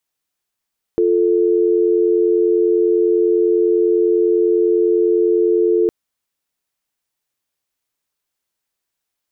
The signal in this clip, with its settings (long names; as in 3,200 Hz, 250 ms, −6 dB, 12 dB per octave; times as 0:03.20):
call progress tone dial tone, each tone −14.5 dBFS 4.91 s